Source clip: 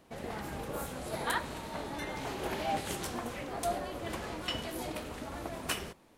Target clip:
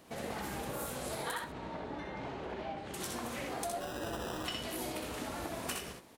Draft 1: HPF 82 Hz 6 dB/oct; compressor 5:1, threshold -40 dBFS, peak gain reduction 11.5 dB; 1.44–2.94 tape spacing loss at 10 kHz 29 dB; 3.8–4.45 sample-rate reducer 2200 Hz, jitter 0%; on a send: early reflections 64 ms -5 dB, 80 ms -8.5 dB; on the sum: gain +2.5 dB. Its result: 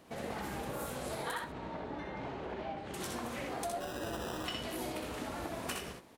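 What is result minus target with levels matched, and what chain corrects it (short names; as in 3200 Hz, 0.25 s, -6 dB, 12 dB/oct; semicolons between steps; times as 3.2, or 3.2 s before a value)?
8000 Hz band -2.5 dB
HPF 82 Hz 6 dB/oct; high shelf 4000 Hz +5 dB; compressor 5:1, threshold -40 dBFS, peak gain reduction 12.5 dB; 1.44–2.94 tape spacing loss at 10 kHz 29 dB; 3.8–4.45 sample-rate reducer 2200 Hz, jitter 0%; on a send: early reflections 64 ms -5 dB, 80 ms -8.5 dB; on the sum: gain +2.5 dB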